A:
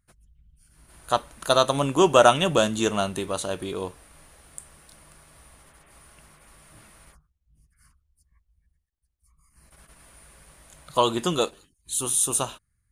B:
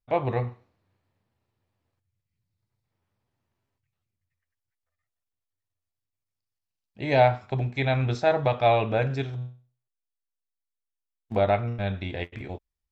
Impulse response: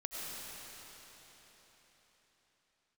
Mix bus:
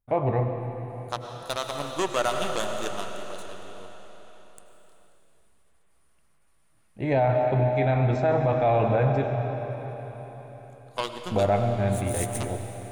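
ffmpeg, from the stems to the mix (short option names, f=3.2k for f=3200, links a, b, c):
-filter_complex "[0:a]aeval=exprs='0.75*(cos(1*acos(clip(val(0)/0.75,-1,1)))-cos(1*PI/2))+0.0376*(cos(3*acos(clip(val(0)/0.75,-1,1)))-cos(3*PI/2))+0.0299*(cos(6*acos(clip(val(0)/0.75,-1,1)))-cos(6*PI/2))+0.075*(cos(7*acos(clip(val(0)/0.75,-1,1)))-cos(7*PI/2))':c=same,volume=-4.5dB,asplit=2[a][b];[b]volume=-7dB[c];[1:a]equalizer=f=4.4k:t=o:w=1.9:g=-14.5,volume=0.5dB,asplit=2[d][e];[e]volume=-4dB[f];[2:a]atrim=start_sample=2205[g];[c][f]amix=inputs=2:normalize=0[h];[h][g]afir=irnorm=-1:irlink=0[i];[a][d][i]amix=inputs=3:normalize=0,alimiter=limit=-14dB:level=0:latency=1:release=11"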